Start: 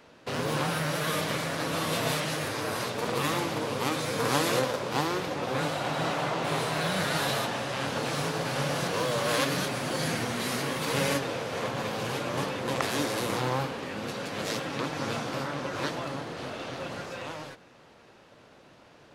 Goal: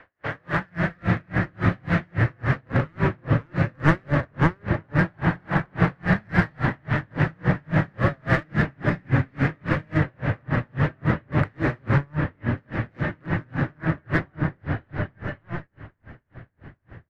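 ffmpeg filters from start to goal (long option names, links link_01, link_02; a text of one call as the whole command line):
ffmpeg -i in.wav -filter_complex "[0:a]lowpass=frequency=1600:width_type=q:width=3.5,asplit=2[link_01][link_02];[link_02]volume=22dB,asoftclip=hard,volume=-22dB,volume=-6dB[link_03];[link_01][link_03]amix=inputs=2:normalize=0,aecho=1:1:504|1008|1512|2016:0.106|0.0572|0.0309|0.0167,asetrate=49392,aresample=44100,lowshelf=frequency=130:width_type=q:width=1.5:gain=9.5,acrossover=split=280[link_04][link_05];[link_04]dynaudnorm=framelen=130:gausssize=11:maxgain=16dB[link_06];[link_06][link_05]amix=inputs=2:normalize=0,aeval=exprs='val(0)*pow(10,-39*(0.5-0.5*cos(2*PI*3.6*n/s))/20)':channel_layout=same" out.wav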